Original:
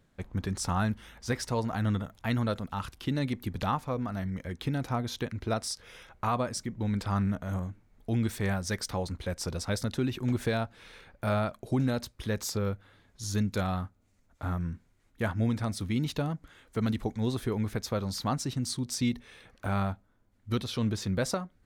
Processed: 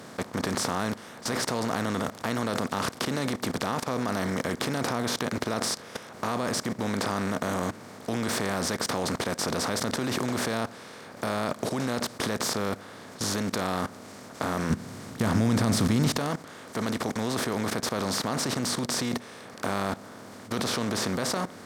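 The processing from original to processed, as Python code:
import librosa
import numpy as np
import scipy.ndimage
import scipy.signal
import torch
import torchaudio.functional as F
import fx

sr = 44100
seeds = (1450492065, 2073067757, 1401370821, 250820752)

y = fx.bin_compress(x, sr, power=0.4)
y = scipy.signal.sosfilt(scipy.signal.butter(2, 160.0, 'highpass', fs=sr, output='sos'), y)
y = fx.level_steps(y, sr, step_db=16)
y = fx.bass_treble(y, sr, bass_db=11, treble_db=2, at=(14.7, 16.18))
y = y * 10.0 ** (3.5 / 20.0)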